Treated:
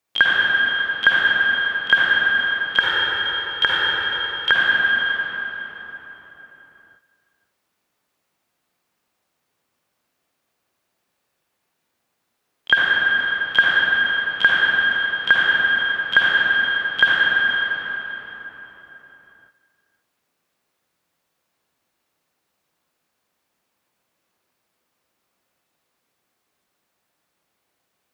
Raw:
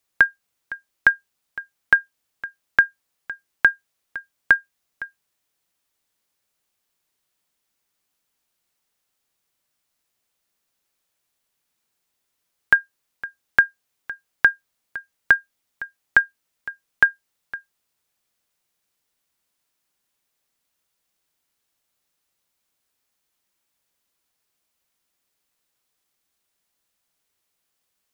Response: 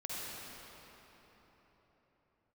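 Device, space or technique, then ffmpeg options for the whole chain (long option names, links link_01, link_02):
shimmer-style reverb: -filter_complex "[0:a]asplit=2[link_01][link_02];[link_02]asetrate=88200,aresample=44100,atempo=0.5,volume=-7dB[link_03];[link_01][link_03]amix=inputs=2:normalize=0[link_04];[1:a]atrim=start_sample=2205[link_05];[link_04][link_05]afir=irnorm=-1:irlink=0,highpass=frequency=120:poles=1,asettb=1/sr,asplit=3[link_06][link_07][link_08];[link_06]atrim=end=2.794[link_09];[link_07]atrim=start=2.79:end=4.52,asetpts=PTS-STARTPTS,afade=type=in:duration=0.004:curve=qsin,afade=type=out:start_time=1.726:duration=0.004:curve=qsin,aecho=1:1:2.2:0.71,atrim=end_sample=76293[link_10];[link_08]atrim=start=4.516[link_11];[link_09][link_10]acrossfade=duration=0.004:curve1=hsin:curve2=qsin[link_12];[link_12][link_11]acrossfade=duration=0.004:curve1=qsin:curve2=hsin,highshelf=frequency=2700:gain=-9,volume=7.5dB"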